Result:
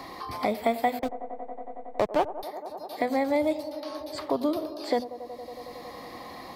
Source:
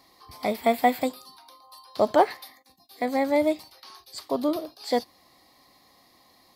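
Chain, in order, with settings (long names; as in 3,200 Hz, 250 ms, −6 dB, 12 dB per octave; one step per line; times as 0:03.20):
high-shelf EQ 5,300 Hz −4 dB
mains-hum notches 50/100/150/200/250 Hz
0:00.99–0:02.43: slack as between gear wheels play −19 dBFS
delay with a band-pass on its return 92 ms, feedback 74%, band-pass 560 Hz, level −14.5 dB
multiband upward and downward compressor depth 70%
level −1.5 dB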